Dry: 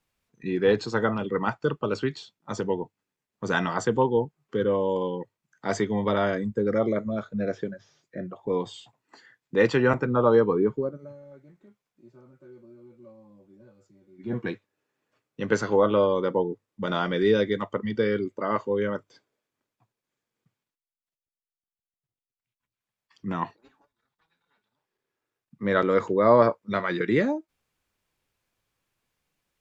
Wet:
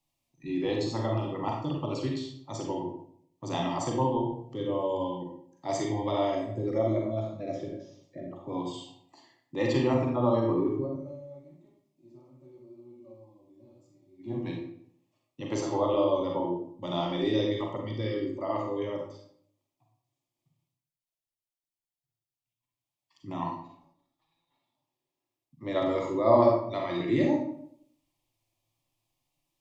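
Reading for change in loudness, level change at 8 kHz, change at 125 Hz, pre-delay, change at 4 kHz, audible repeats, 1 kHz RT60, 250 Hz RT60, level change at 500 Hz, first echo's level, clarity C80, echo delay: −4.0 dB, can't be measured, −1.0 dB, 36 ms, −1.5 dB, no echo audible, 0.60 s, 0.75 s, −5.0 dB, no echo audible, 6.0 dB, no echo audible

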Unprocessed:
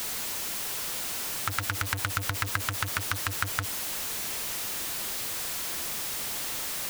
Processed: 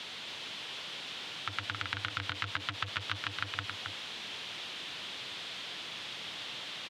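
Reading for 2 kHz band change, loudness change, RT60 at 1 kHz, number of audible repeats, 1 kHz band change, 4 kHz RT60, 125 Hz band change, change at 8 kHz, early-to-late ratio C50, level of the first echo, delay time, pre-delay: −4.5 dB, −8.0 dB, no reverb audible, 1, −6.5 dB, no reverb audible, −9.5 dB, −20.0 dB, no reverb audible, −5.5 dB, 271 ms, no reverb audible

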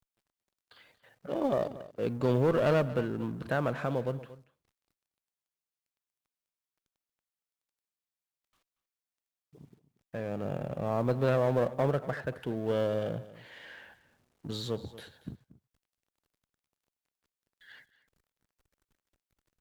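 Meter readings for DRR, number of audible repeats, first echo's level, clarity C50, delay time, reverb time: no reverb audible, 1, −17.0 dB, no reverb audible, 233 ms, no reverb audible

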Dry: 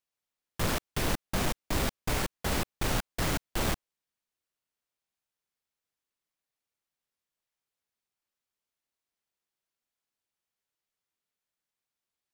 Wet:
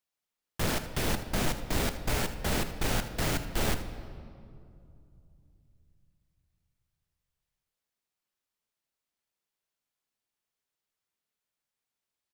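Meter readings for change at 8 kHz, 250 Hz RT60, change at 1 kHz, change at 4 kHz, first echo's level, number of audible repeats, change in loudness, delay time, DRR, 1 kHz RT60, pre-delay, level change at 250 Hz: +0.5 dB, 3.6 s, −0.5 dB, +0.5 dB, −15.0 dB, 1, +0.5 dB, 79 ms, 8.5 dB, 2.3 s, 5 ms, +0.5 dB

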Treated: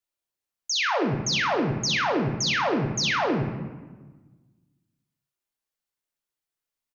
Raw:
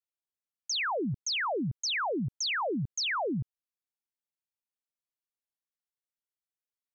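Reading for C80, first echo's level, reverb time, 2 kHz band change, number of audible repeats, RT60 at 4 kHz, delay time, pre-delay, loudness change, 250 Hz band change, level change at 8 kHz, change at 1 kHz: 7.5 dB, −8.0 dB, 1.3 s, +6.5 dB, 1, 0.80 s, 63 ms, 3 ms, +6.5 dB, +7.0 dB, can't be measured, +7.0 dB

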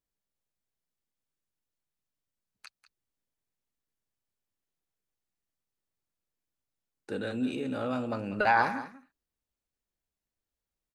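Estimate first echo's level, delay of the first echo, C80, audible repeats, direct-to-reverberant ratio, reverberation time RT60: −14.5 dB, 193 ms, no reverb audible, 1, no reverb audible, no reverb audible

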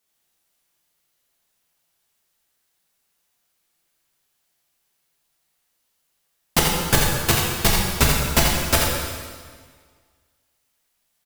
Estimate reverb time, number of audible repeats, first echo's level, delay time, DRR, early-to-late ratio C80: 1.7 s, 1, −5.5 dB, 84 ms, −3.5 dB, 1.0 dB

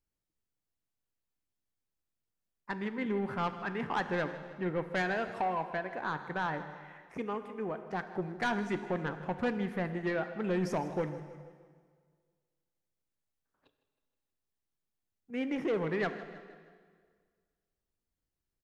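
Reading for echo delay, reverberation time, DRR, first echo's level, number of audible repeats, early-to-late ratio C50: 158 ms, 1.8 s, 9.0 dB, −16.5 dB, 4, 10.0 dB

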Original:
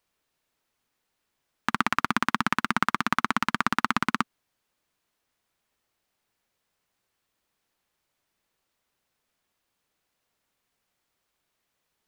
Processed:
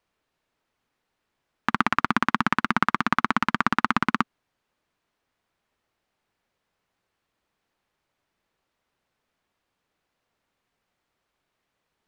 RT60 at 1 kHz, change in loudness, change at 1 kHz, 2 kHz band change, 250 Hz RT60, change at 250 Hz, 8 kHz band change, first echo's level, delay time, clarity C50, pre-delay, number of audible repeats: no reverb audible, +2.5 dB, +3.0 dB, +2.0 dB, no reverb audible, +3.5 dB, −5.0 dB, no echo audible, no echo audible, no reverb audible, no reverb audible, no echo audible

